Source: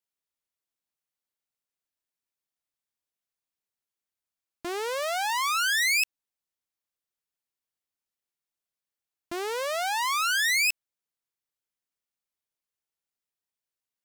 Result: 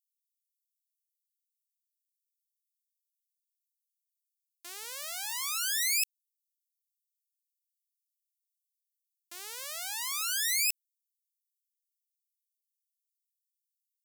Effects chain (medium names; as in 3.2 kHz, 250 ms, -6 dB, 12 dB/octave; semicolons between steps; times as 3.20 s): differentiator